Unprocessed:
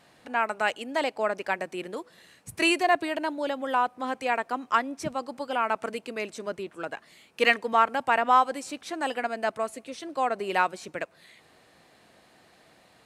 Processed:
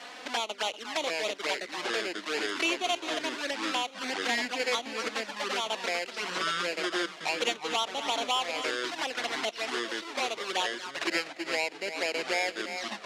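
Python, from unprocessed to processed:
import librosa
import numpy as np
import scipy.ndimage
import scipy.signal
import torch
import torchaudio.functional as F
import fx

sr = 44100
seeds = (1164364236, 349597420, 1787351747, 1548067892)

p1 = fx.halfwave_hold(x, sr)
p2 = fx.high_shelf(p1, sr, hz=2700.0, db=8.5)
p3 = p2 + fx.echo_single(p2, sr, ms=241, db=-13.5, dry=0)
p4 = fx.env_flanger(p3, sr, rest_ms=4.3, full_db=-17.5)
p5 = fx.low_shelf(p4, sr, hz=460.0, db=-11.5)
p6 = fx.echo_pitch(p5, sr, ms=580, semitones=-6, count=2, db_per_echo=-3.0)
p7 = scipy.signal.sosfilt(scipy.signal.butter(4, 240.0, 'highpass', fs=sr, output='sos'), p6)
p8 = fx.quant_float(p7, sr, bits=2)
p9 = scipy.signal.sosfilt(scipy.signal.butter(2, 4300.0, 'lowpass', fs=sr, output='sos'), p8)
p10 = fx.band_squash(p9, sr, depth_pct=70)
y = p10 * librosa.db_to_amplitude(-6.0)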